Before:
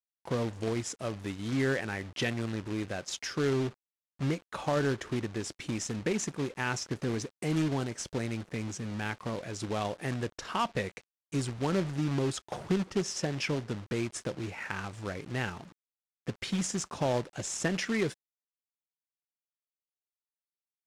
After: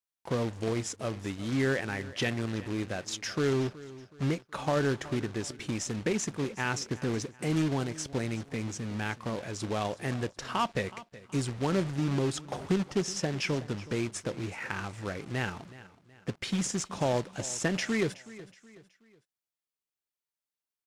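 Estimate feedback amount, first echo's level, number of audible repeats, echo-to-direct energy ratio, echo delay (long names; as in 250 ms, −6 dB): 40%, −18.0 dB, 3, −17.5 dB, 372 ms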